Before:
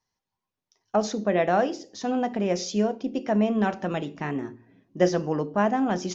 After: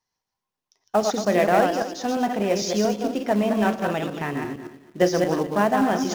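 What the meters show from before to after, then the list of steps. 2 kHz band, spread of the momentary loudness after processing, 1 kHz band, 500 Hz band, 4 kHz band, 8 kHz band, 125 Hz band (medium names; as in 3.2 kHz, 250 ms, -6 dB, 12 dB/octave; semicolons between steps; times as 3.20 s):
+5.0 dB, 9 LU, +4.0 dB, +3.5 dB, +5.5 dB, no reading, +1.5 dB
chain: backward echo that repeats 114 ms, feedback 43%, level -4 dB; bass shelf 270 Hz -5 dB; in parallel at -7 dB: companded quantiser 4-bit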